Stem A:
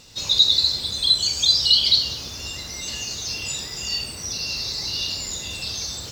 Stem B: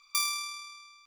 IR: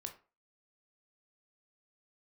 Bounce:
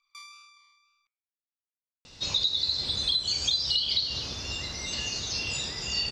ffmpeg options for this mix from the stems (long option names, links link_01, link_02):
-filter_complex "[0:a]adelay=2050,volume=-0.5dB[link_01];[1:a]flanger=delay=1.3:depth=6:regen=71:speed=1.9:shape=sinusoidal,volume=-10.5dB[link_02];[link_01][link_02]amix=inputs=2:normalize=0,lowpass=5300,bandreject=frequency=112.9:width_type=h:width=4,bandreject=frequency=225.8:width_type=h:width=4,bandreject=frequency=338.7:width_type=h:width=4,bandreject=frequency=451.6:width_type=h:width=4,bandreject=frequency=564.5:width_type=h:width=4,bandreject=frequency=677.4:width_type=h:width=4,bandreject=frequency=790.3:width_type=h:width=4,bandreject=frequency=903.2:width_type=h:width=4,bandreject=frequency=1016.1:width_type=h:width=4,bandreject=frequency=1129:width_type=h:width=4,bandreject=frequency=1241.9:width_type=h:width=4,bandreject=frequency=1354.8:width_type=h:width=4,bandreject=frequency=1467.7:width_type=h:width=4,bandreject=frequency=1580.6:width_type=h:width=4,bandreject=frequency=1693.5:width_type=h:width=4,bandreject=frequency=1806.4:width_type=h:width=4,bandreject=frequency=1919.3:width_type=h:width=4,bandreject=frequency=2032.2:width_type=h:width=4,bandreject=frequency=2145.1:width_type=h:width=4,bandreject=frequency=2258:width_type=h:width=4,bandreject=frequency=2370.9:width_type=h:width=4,bandreject=frequency=2483.8:width_type=h:width=4,acompressor=threshold=-23dB:ratio=12"